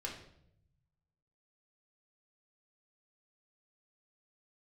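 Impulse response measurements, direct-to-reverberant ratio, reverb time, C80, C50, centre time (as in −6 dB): −2.0 dB, 0.75 s, 9.5 dB, 6.0 dB, 32 ms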